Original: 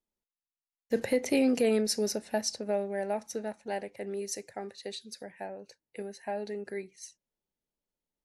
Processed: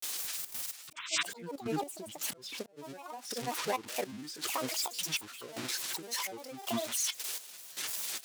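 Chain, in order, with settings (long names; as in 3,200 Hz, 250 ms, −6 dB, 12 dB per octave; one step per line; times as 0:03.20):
spike at every zero crossing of −26 dBFS
high-pass filter 320 Hz 6 dB per octave
high-shelf EQ 8,900 Hz −11.5 dB
downward compressor 12 to 1, threshold −36 dBFS, peak gain reduction 13 dB
volume swells 465 ms
sound drawn into the spectrogram noise, 0:00.97–0:01.22, 1,600–6,500 Hz −38 dBFS
gate pattern "xxx.x..." 108 BPM −12 dB
granular cloud, spray 34 ms, pitch spread up and down by 12 semitones
buffer that repeats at 0:00.83/0:04.94/0:07.72, samples 512, times 3
level +9 dB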